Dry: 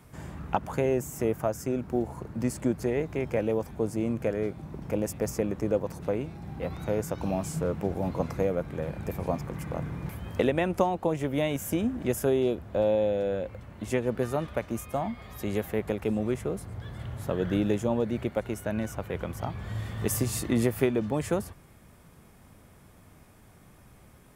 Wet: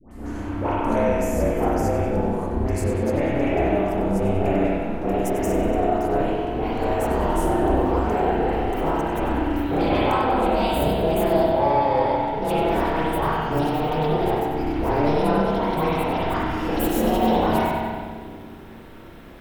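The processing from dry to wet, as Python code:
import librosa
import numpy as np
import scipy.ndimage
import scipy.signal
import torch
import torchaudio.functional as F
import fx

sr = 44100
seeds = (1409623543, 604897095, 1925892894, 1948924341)

p1 = fx.speed_glide(x, sr, from_pct=89, to_pct=162)
p2 = fx.over_compress(p1, sr, threshold_db=-29.0, ratio=-1.0)
p3 = p1 + (p2 * librosa.db_to_amplitude(-2.0))
p4 = p3 * np.sin(2.0 * np.pi * 150.0 * np.arange(len(p3)) / sr)
p5 = fx.dispersion(p4, sr, late='highs', ms=113.0, hz=1100.0)
p6 = 10.0 ** (-19.5 / 20.0) * np.tanh(p5 / 10.0 ** (-19.5 / 20.0))
p7 = p6 + fx.echo_split(p6, sr, split_hz=360.0, low_ms=292, high_ms=95, feedback_pct=52, wet_db=-10, dry=0)
y = fx.rev_spring(p7, sr, rt60_s=1.6, pass_ms=(31, 45), chirp_ms=45, drr_db=-7.0)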